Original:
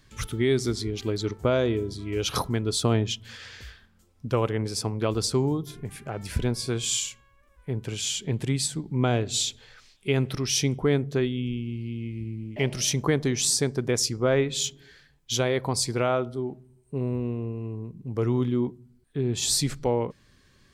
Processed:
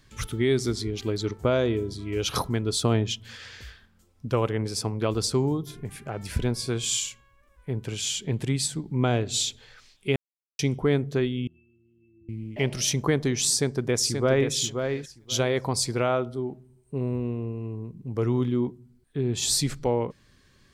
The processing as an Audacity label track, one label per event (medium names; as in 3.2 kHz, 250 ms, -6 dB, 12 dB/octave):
10.160000	10.590000	mute
11.470000	12.290000	pitch-class resonator E, decay 0.77 s
13.520000	14.520000	echo throw 530 ms, feedback 15%, level -6 dB